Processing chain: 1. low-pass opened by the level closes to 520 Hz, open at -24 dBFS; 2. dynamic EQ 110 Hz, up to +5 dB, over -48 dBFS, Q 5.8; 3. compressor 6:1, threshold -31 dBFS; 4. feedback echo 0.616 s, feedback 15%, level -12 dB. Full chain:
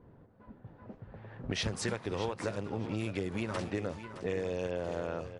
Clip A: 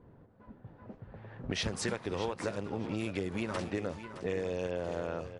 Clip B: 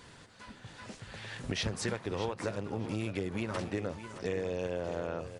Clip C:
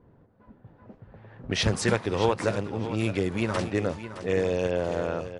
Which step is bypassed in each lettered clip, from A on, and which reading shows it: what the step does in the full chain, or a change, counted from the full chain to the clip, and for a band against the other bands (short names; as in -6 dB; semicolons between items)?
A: 2, 125 Hz band -2.0 dB; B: 1, momentary loudness spread change -2 LU; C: 3, crest factor change +2.5 dB